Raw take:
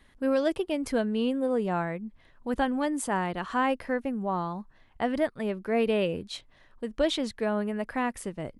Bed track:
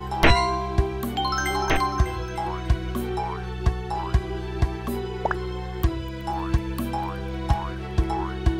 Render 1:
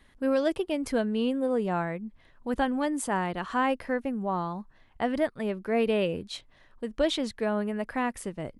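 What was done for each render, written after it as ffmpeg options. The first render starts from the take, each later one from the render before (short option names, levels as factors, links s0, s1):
-af anull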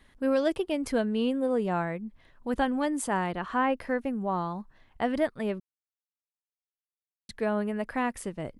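-filter_complex "[0:a]asettb=1/sr,asplit=3[s0][s1][s2];[s0]atrim=end=3.324[s3];[s1]atrim=start=3.32:end=3.77,asetpts=PTS-STARTPTS,afade=t=in:d=0.004:c=qsin,afade=t=out:st=0.446:d=0.004:c=qsin,acrossover=split=3100[s4][s5];[s5]acompressor=threshold=0.00112:ratio=4:attack=1:release=60[s6];[s4][s6]amix=inputs=2:normalize=0[s7];[s2]atrim=start=3.766[s8];[s3][s7]acrossfade=d=0.004:c1=hsin:c2=qsin[s9];[s9][s8]acrossfade=d=0.004:c1=qsin:c2=hsin,asplit=3[s10][s11][s12];[s10]atrim=end=5.6,asetpts=PTS-STARTPTS,afade=t=out:st=5.596:d=0.004:c=hsin[s13];[s11]atrim=start=5.6:end=7.29,asetpts=PTS-STARTPTS,volume=0[s14];[s12]atrim=start=7.29,asetpts=PTS-STARTPTS,afade=t=in:d=0.004:c=hsin[s15];[s13][s14][s15]concat=n=3:v=0:a=1"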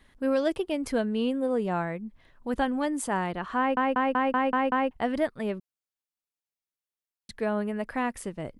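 -filter_complex "[0:a]asplit=8[s0][s1][s2][s3][s4][s5][s6][s7];[s0]atrim=end=3.772[s8];[s1]atrim=start=3.578:end=3.772[s9];[s2]atrim=start=3.578:end=3.772[s10];[s3]atrim=start=3.578:end=3.772[s11];[s4]atrim=start=3.578:end=3.772[s12];[s5]atrim=start=3.578:end=3.772[s13];[s6]atrim=start=3.578:end=3.772[s14];[s7]atrim=start=4.908[s15];[s8][s9]acrossfade=d=0.004:c1=hsin:c2=hsin[s16];[s16][s10]acrossfade=d=0.004:c1=hsin:c2=hsin[s17];[s17][s11]acrossfade=d=0.004:c1=hsin:c2=hsin[s18];[s18][s12]acrossfade=d=0.004:c1=hsin:c2=hsin[s19];[s19][s13]acrossfade=d=0.004:c1=hsin:c2=hsin[s20];[s20][s14]acrossfade=d=0.004:c1=hsin:c2=hsin[s21];[s21][s15]acrossfade=d=0.004:c1=hsin:c2=hsin"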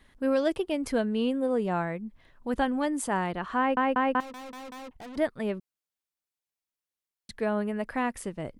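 -filter_complex "[0:a]asettb=1/sr,asplit=3[s0][s1][s2];[s0]atrim=end=4.204[s3];[s1]atrim=start=4.2:end=5.17,asetpts=PTS-STARTPTS,afade=t=in:d=0.004:c=qsin,afade=t=out:st=0.966:d=0.004:c=qsin,aeval=exprs='(tanh(112*val(0)+0.35)-tanh(0.35))/112':c=same[s4];[s2]atrim=start=5.166[s5];[s3][s4]acrossfade=d=0.004:c1=hsin:c2=qsin[s6];[s6][s5]acrossfade=d=0.004:c1=qsin:c2=hsin"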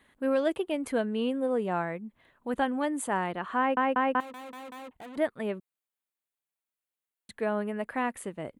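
-af "highpass=f=220:p=1,equalizer=f=5300:t=o:w=0.49:g=-13.5"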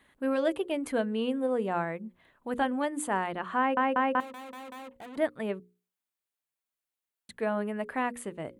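-af "bandreject=f=60:t=h:w=6,bandreject=f=120:t=h:w=6,bandreject=f=180:t=h:w=6,bandreject=f=240:t=h:w=6,bandreject=f=300:t=h:w=6,bandreject=f=360:t=h:w=6,bandreject=f=420:t=h:w=6,bandreject=f=480:t=h:w=6,bandreject=f=540:t=h:w=6"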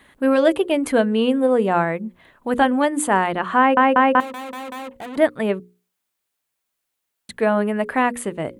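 -af "volume=3.76"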